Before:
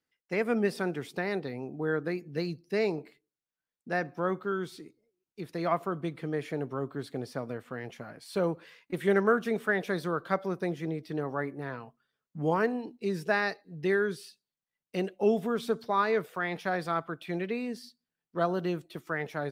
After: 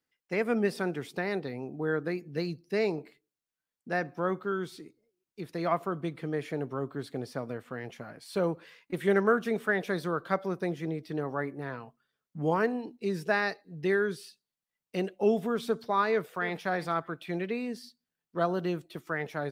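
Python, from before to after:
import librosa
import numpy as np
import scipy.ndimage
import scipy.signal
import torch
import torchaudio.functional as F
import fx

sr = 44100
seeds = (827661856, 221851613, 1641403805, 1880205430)

y = fx.echo_throw(x, sr, start_s=16.1, length_s=0.52, ms=310, feedback_pct=15, wet_db=-14.5)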